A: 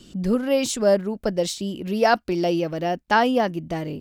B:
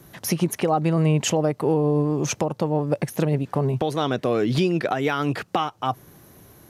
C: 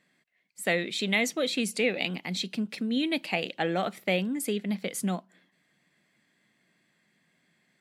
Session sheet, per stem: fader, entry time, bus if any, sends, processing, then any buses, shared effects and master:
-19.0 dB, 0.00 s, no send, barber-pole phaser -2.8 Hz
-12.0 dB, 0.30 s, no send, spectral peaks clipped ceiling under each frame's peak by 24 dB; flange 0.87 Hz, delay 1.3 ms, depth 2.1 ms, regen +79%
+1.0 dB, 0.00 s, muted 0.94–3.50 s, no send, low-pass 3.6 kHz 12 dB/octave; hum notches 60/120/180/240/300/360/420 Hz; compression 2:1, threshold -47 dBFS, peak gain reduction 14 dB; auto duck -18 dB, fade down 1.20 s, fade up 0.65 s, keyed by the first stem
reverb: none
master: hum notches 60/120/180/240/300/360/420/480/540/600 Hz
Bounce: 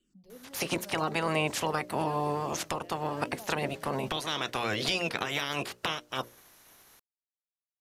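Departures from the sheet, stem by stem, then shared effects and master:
stem A -19.0 dB -> -25.0 dB; stem B -12.0 dB -> -4.0 dB; stem C: muted

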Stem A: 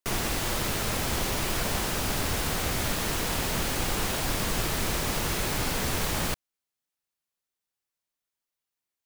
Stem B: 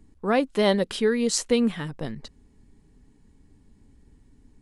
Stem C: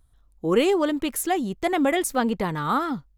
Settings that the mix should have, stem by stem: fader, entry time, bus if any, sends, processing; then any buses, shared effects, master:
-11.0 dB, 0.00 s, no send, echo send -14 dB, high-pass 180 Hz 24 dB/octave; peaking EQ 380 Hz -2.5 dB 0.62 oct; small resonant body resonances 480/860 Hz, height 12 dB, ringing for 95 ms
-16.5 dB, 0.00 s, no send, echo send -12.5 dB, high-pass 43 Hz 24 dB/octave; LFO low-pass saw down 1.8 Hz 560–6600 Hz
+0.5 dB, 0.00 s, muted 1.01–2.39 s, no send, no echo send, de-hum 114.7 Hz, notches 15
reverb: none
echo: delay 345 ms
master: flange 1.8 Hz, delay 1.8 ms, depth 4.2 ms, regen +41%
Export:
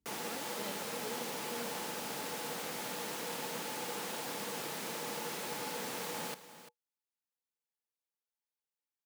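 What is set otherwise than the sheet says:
stem B -16.5 dB -> -28.0 dB; stem C: muted; master: missing flange 1.8 Hz, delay 1.8 ms, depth 4.2 ms, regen +41%

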